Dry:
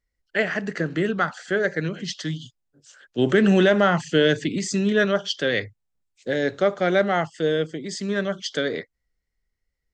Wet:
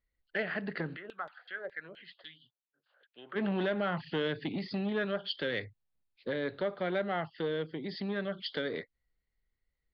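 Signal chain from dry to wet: steep low-pass 4700 Hz 96 dB/oct; compressor 2:1, threshold -30 dBFS, peak gain reduction 9.5 dB; 0.95–3.35 LFO band-pass saw down 6.4 Hz -> 1.7 Hz 510–3600 Hz; core saturation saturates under 490 Hz; gain -4 dB

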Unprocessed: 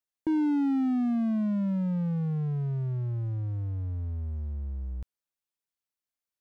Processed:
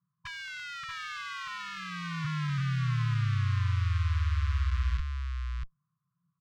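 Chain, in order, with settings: Doppler pass-by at 2.89, 19 m/s, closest 22 m; high shelf 2900 Hz +10.5 dB; in parallel at +2.5 dB: limiter -34.5 dBFS, peak gain reduction 10 dB; on the sum: chorus voices 4, 0.65 Hz, delay 13 ms, depth 3.4 ms; sample leveller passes 1; Schmitt trigger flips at -47 dBFS; band noise 180–560 Hz -60 dBFS; brick-wall FIR band-stop 160–1000 Hz; air absorption 160 m; echo 0.637 s -4.5 dB; gain +2.5 dB

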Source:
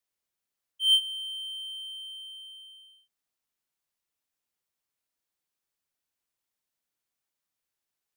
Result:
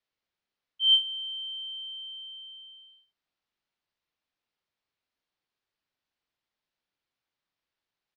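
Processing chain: LPF 4700 Hz 24 dB/oct; doubler 45 ms -9 dB; gain +2.5 dB

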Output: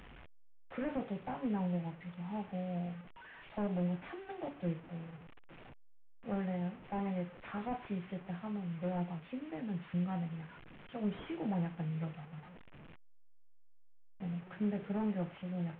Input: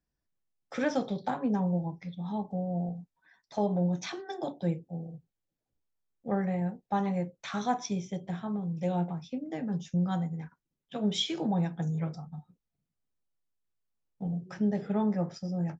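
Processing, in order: delta modulation 16 kbps, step -41 dBFS; gain -6.5 dB

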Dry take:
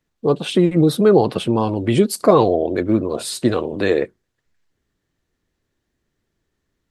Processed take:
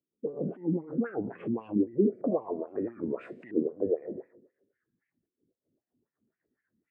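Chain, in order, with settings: spectral trails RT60 0.74 s; resonant high shelf 2800 Hz -13 dB, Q 3; compressor 6:1, threshold -20 dBFS, peak gain reduction 14.5 dB; graphic EQ 125/250/1000/2000/4000/8000 Hz +7/+5/-11/-7/-5/+12 dB; limiter -14 dBFS, peak gain reduction 7 dB; darkening echo 99 ms, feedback 64%, low-pass 920 Hz, level -16 dB; transient shaper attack -6 dB, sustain +2 dB; LFO low-pass saw up 0.57 Hz 340–2900 Hz; reverb removal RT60 0.85 s; wah 3.8 Hz 210–2700 Hz, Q 2.3; record warp 33 1/3 rpm, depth 160 cents

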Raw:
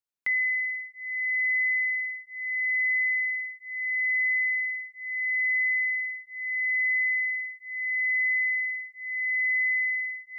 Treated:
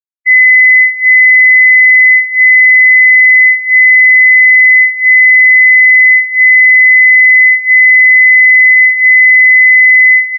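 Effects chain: 7.51–8.75 comb 5.4 ms, depth 50%; feedback echo 0.191 s, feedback 45%, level -13 dB; maximiser +29.5 dB; spectral expander 2.5:1

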